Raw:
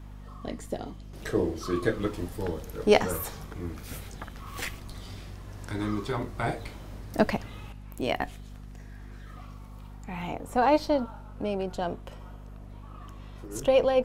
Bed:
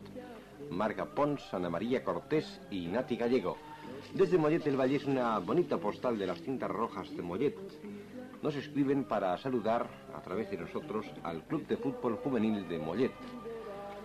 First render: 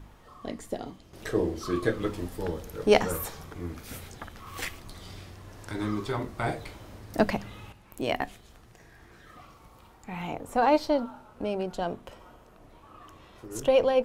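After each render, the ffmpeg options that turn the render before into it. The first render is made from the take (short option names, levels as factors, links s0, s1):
-af "bandreject=f=50:t=h:w=4,bandreject=f=100:t=h:w=4,bandreject=f=150:t=h:w=4,bandreject=f=200:t=h:w=4,bandreject=f=250:t=h:w=4"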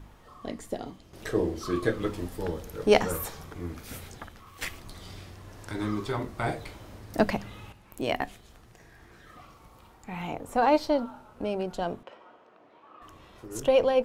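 -filter_complex "[0:a]asettb=1/sr,asplit=3[s0][s1][s2];[s0]atrim=end=12.034[s3];[s1]atrim=start=12.03:end=13.02,asetpts=PTS-STARTPTS,afade=t=in:d=0.004:c=qsin,afade=t=out:st=0.986:d=0.004:c=qsin,highpass=320,lowpass=3200[s4];[s2]atrim=start=13.016[s5];[s3][s4]acrossfade=d=0.004:c1=hsin:c2=qsin[s6];[s6][s5]acrossfade=d=0.004:c1=qsin:c2=hsin,asplit=2[s7][s8];[s7]atrim=end=4.61,asetpts=PTS-STARTPTS,afade=t=out:st=4.15:d=0.46:silence=0.237137[s9];[s8]atrim=start=4.61,asetpts=PTS-STARTPTS,afade=t=in:d=0.004:c=hsin:silence=0.237137[s10];[s9][s10]concat=n=2:v=0:a=1"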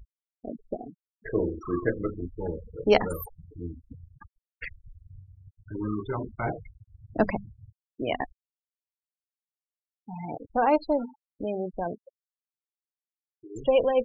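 -af "afftfilt=real='re*gte(hypot(re,im),0.0447)':imag='im*gte(hypot(re,im),0.0447)':win_size=1024:overlap=0.75"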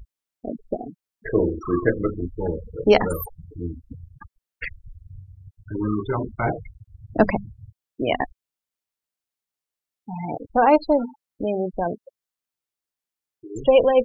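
-af "volume=2.11,alimiter=limit=0.708:level=0:latency=1"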